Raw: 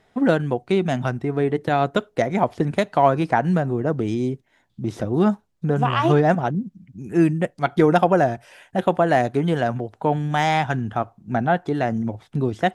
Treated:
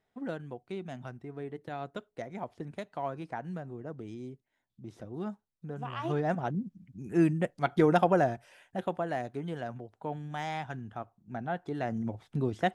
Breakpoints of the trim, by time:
5.80 s -19 dB
6.65 s -7.5 dB
8.18 s -7.5 dB
9.17 s -16 dB
11.38 s -16 dB
12.13 s -8 dB

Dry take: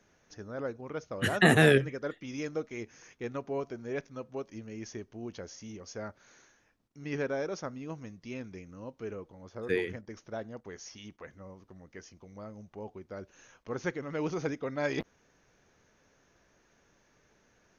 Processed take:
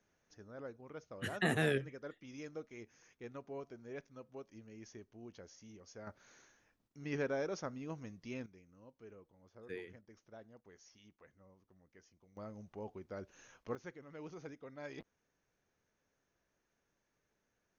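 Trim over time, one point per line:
-11.5 dB
from 6.07 s -4 dB
from 8.46 s -16 dB
from 12.37 s -3.5 dB
from 13.75 s -16 dB

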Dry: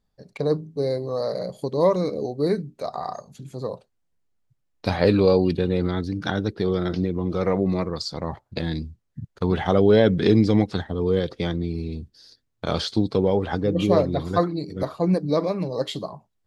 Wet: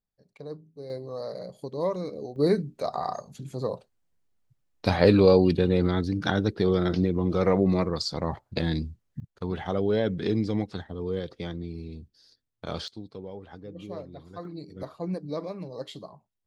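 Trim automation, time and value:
-16.5 dB
from 0.90 s -9 dB
from 2.36 s 0 dB
from 9.20 s -9 dB
from 12.88 s -19.5 dB
from 14.45 s -11 dB

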